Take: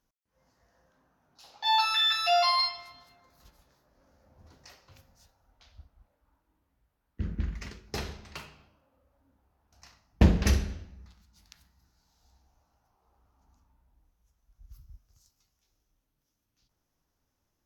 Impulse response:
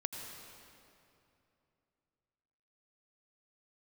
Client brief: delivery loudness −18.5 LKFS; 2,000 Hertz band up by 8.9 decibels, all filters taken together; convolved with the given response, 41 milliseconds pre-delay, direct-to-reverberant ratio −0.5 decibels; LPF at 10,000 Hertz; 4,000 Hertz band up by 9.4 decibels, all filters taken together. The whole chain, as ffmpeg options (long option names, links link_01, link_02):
-filter_complex "[0:a]lowpass=10000,equalizer=frequency=2000:width_type=o:gain=8.5,equalizer=frequency=4000:width_type=o:gain=8.5,asplit=2[link_01][link_02];[1:a]atrim=start_sample=2205,adelay=41[link_03];[link_02][link_03]afir=irnorm=-1:irlink=0,volume=0dB[link_04];[link_01][link_04]amix=inputs=2:normalize=0,volume=1.5dB"